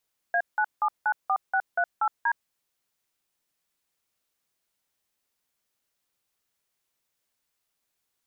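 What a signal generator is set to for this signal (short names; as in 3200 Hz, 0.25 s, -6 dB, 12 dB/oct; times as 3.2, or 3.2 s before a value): DTMF "A9794638D", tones 66 ms, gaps 0.173 s, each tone -23.5 dBFS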